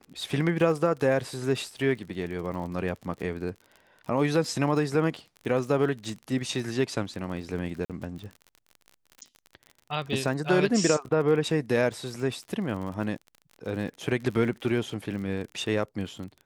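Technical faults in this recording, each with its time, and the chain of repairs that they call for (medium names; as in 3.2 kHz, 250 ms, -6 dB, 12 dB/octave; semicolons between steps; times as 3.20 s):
crackle 43 per s -36 dBFS
7.85–7.90 s: dropout 47 ms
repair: de-click; interpolate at 7.85 s, 47 ms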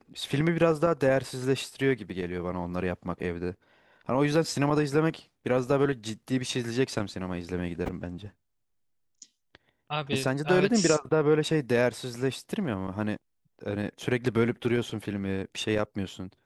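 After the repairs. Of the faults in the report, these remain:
nothing left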